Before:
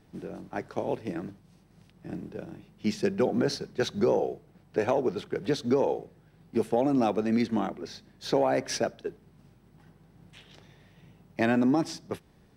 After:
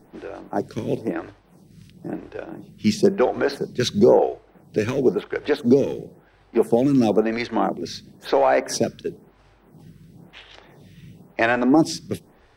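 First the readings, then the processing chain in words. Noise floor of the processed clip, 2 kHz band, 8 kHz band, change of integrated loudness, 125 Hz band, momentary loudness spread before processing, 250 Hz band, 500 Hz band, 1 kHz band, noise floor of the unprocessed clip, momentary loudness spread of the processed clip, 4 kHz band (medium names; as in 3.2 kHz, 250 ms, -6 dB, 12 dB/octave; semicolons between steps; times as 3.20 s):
-56 dBFS, +9.0 dB, +7.0 dB, +7.5 dB, +6.5 dB, 15 LU, +6.5 dB, +7.5 dB, +7.0 dB, -60 dBFS, 17 LU, +6.5 dB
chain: in parallel at -5 dB: hard clipper -20.5 dBFS, distortion -14 dB; on the sum: lamp-driven phase shifter 0.98 Hz; trim +7.5 dB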